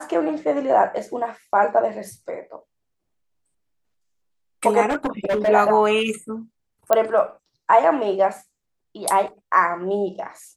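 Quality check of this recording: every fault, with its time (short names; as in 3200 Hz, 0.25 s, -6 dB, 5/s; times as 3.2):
4.89–5.49 clipped -17.5 dBFS
6.93 pop -4 dBFS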